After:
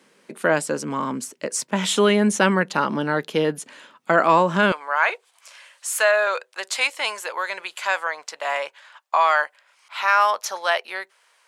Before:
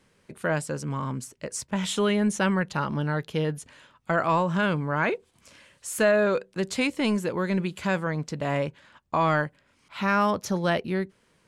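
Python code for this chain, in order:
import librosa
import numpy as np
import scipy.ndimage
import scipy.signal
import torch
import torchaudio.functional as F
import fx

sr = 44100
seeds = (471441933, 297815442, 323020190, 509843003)

y = fx.highpass(x, sr, hz=fx.steps((0.0, 210.0), (4.72, 700.0)), slope=24)
y = y * librosa.db_to_amplitude(7.5)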